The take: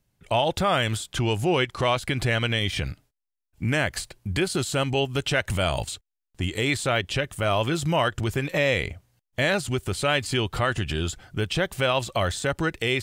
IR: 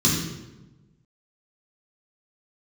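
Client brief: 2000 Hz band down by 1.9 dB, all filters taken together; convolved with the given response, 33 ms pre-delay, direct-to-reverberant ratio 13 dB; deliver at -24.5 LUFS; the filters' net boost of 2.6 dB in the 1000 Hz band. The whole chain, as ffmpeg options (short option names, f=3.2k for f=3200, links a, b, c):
-filter_complex "[0:a]equalizer=f=1k:t=o:g=4.5,equalizer=f=2k:t=o:g=-4,asplit=2[a][b];[1:a]atrim=start_sample=2205,adelay=33[c];[b][c]afir=irnorm=-1:irlink=0,volume=-27.5dB[d];[a][d]amix=inputs=2:normalize=0,volume=-1dB"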